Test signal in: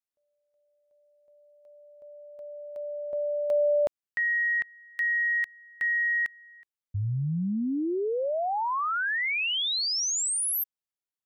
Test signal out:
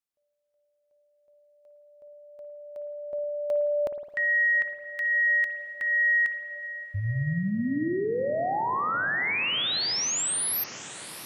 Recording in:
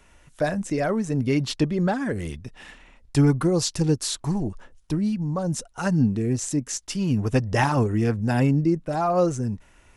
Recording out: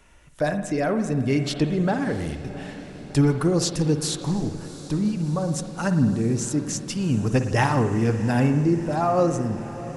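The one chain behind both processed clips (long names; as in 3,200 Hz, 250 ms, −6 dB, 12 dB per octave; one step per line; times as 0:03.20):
on a send: feedback delay with all-pass diffusion 705 ms, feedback 71%, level −16 dB
on the sum: spring reverb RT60 1.3 s, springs 53 ms, chirp 35 ms, DRR 8 dB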